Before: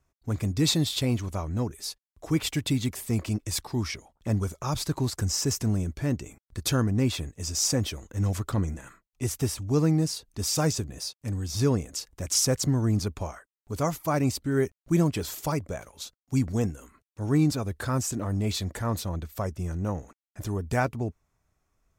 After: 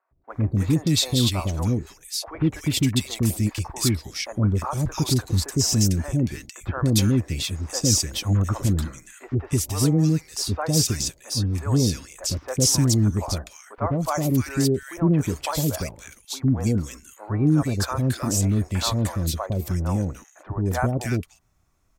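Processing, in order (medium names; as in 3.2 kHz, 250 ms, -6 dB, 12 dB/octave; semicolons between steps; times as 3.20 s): band-stop 440 Hz, Q 12; in parallel at +1.5 dB: peak limiter -20.5 dBFS, peak gain reduction 8.5 dB; on the sum: three bands offset in time mids, lows, highs 110/300 ms, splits 550/1800 Hz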